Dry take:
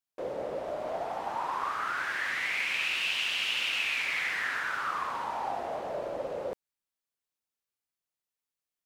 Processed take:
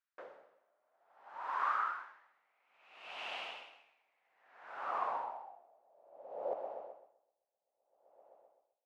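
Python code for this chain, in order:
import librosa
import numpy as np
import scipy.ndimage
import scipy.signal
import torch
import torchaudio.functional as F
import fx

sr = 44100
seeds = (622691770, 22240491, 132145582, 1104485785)

p1 = fx.dynamic_eq(x, sr, hz=1600.0, q=0.93, threshold_db=-46.0, ratio=4.0, max_db=-6)
p2 = fx.filter_sweep_bandpass(p1, sr, from_hz=1500.0, to_hz=740.0, start_s=1.66, end_s=2.44, q=2.6)
p3 = p2 + fx.echo_heads(p2, sr, ms=129, heads='first and third', feedback_pct=68, wet_db=-15, dry=0)
p4 = p3 * 10.0 ** (-38 * (0.5 - 0.5 * np.cos(2.0 * np.pi * 0.6 * np.arange(len(p3)) / sr)) / 20.0)
y = F.gain(torch.from_numpy(p4), 8.0).numpy()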